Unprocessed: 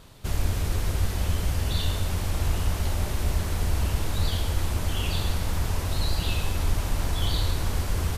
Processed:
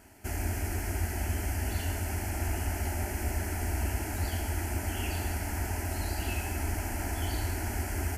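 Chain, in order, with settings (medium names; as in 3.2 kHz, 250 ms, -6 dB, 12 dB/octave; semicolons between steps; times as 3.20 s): high-pass 72 Hz; static phaser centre 750 Hz, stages 8; trim +1 dB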